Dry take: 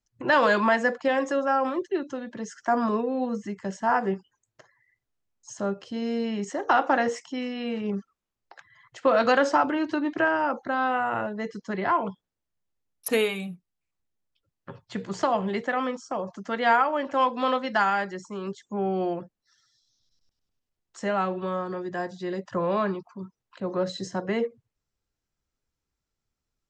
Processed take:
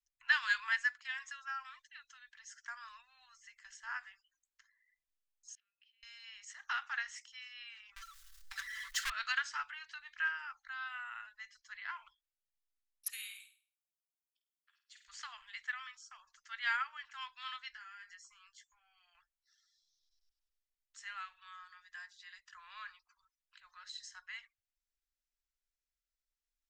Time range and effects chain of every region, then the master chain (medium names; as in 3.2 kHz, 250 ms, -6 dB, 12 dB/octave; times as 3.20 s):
5.55–6.03 s: compression 4:1, threshold -43 dBFS + ladder band-pass 2.8 kHz, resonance 70% + distance through air 220 m
7.96–9.10 s: peaking EQ 2.4 kHz -10.5 dB 0.45 oct + comb 5.2 ms, depth 92% + power-law waveshaper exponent 0.5
13.10–15.08 s: differentiator + flutter echo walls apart 8.7 m, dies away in 0.44 s
17.71–19.15 s: band-stop 3.8 kHz, Q 5.6 + compression 16:1, threshold -34 dBFS + doubling 17 ms -5 dB
whole clip: inverse Chebyshev band-stop 160–490 Hz, stop band 70 dB; upward expansion 1.5:1, over -34 dBFS; trim -2.5 dB